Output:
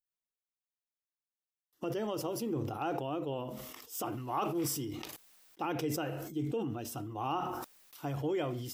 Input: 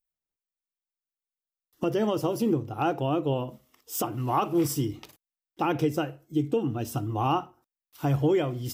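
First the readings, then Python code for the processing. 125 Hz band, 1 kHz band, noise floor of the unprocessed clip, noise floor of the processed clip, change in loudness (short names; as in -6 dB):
-10.5 dB, -7.5 dB, under -85 dBFS, under -85 dBFS, -8.5 dB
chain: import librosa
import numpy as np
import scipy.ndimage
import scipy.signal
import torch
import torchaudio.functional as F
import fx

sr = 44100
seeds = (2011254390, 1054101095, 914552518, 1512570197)

y = fx.low_shelf(x, sr, hz=170.0, db=-9.5)
y = fx.sustainer(y, sr, db_per_s=33.0)
y = y * 10.0 ** (-8.5 / 20.0)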